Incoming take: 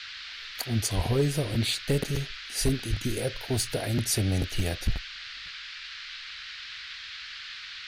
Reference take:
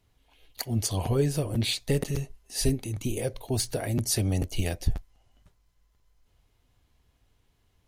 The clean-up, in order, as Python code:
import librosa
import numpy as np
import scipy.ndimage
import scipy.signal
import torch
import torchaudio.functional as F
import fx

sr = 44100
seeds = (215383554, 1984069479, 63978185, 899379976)

y = fx.fix_declip(x, sr, threshold_db=-16.5)
y = fx.highpass(y, sr, hz=140.0, slope=24, at=(0.95, 1.07), fade=0.02)
y = fx.highpass(y, sr, hz=140.0, slope=24, at=(2.89, 3.01), fade=0.02)
y = fx.noise_reduce(y, sr, print_start_s=5.59, print_end_s=6.09, reduce_db=26.0)